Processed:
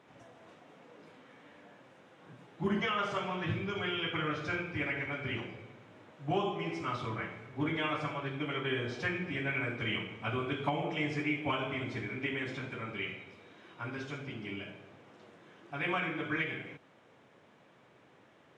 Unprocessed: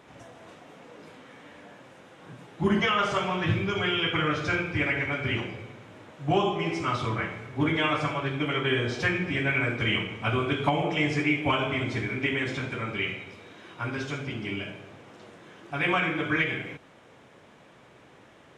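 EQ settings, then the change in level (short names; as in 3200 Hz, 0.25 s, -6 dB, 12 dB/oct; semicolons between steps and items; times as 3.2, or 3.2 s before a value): HPF 96 Hz; high shelf 7300 Hz -9 dB; -7.5 dB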